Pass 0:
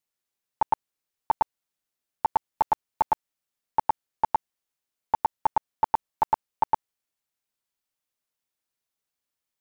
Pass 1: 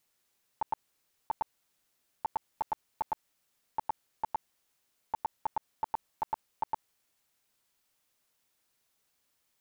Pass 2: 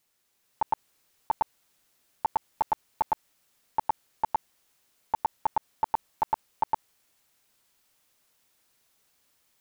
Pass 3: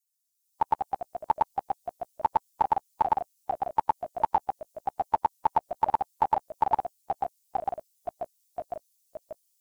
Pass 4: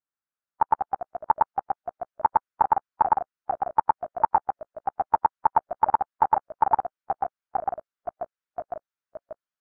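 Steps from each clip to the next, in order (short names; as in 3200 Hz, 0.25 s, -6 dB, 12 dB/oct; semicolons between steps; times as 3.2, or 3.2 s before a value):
negative-ratio compressor -24 dBFS, ratio -0.5; limiter -27.5 dBFS, peak gain reduction 8 dB; gain +3.5 dB
AGC gain up to 5 dB; gain +2 dB
per-bin expansion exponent 2; echoes that change speed 0.119 s, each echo -2 st, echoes 3, each echo -6 dB; gain +4.5 dB
synth low-pass 1400 Hz, resonance Q 2.9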